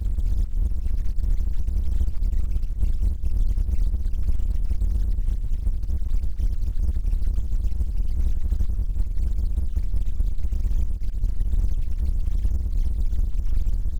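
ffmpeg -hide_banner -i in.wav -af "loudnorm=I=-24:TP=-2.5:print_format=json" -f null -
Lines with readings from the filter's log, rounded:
"input_i" : "-28.3",
"input_tp" : "-10.5",
"input_lra" : "0.8",
"input_thresh" : "-38.3",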